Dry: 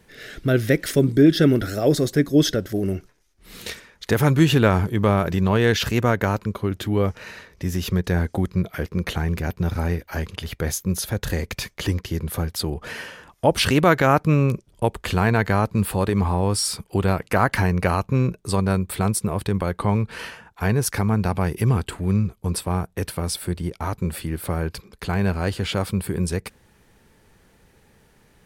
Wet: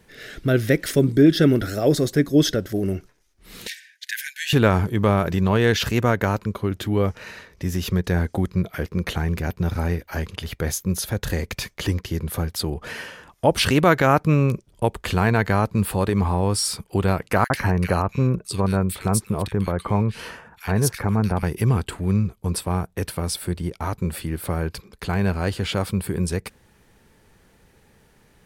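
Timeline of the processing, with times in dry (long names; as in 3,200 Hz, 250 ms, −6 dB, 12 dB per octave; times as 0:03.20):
0:03.67–0:04.53: linear-phase brick-wall high-pass 1,500 Hz
0:17.44–0:21.43: multiband delay without the direct sound highs, lows 60 ms, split 2,000 Hz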